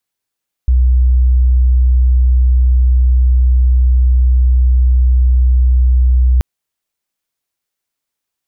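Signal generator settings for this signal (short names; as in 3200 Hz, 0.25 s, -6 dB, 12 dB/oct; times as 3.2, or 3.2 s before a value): tone sine 62.6 Hz -6.5 dBFS 5.73 s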